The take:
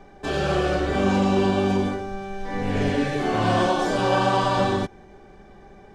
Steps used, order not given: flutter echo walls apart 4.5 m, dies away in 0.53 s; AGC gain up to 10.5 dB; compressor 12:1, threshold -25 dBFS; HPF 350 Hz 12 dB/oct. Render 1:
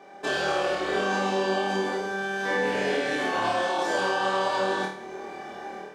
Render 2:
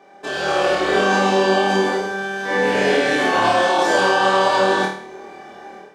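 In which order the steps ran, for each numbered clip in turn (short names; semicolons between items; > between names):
HPF > AGC > compressor > flutter echo; HPF > compressor > flutter echo > AGC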